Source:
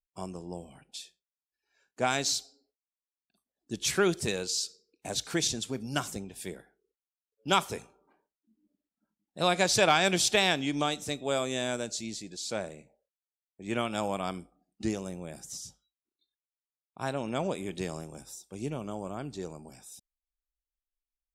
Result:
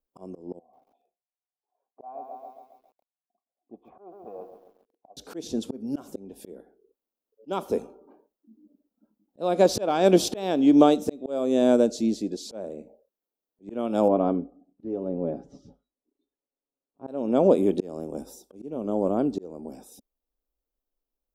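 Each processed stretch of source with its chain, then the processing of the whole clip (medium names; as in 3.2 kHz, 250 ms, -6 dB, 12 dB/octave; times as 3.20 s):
0.59–5.17 s: cascade formant filter a + bit-crushed delay 136 ms, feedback 55%, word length 11-bit, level -9 dB
14.08–17.08 s: tape spacing loss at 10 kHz 40 dB + comb 7.2 ms, depth 43%
whole clip: graphic EQ 125/250/500/2000/4000/8000 Hz -10/+11/+9/-12/-4/-12 dB; slow attack 449 ms; trim +7 dB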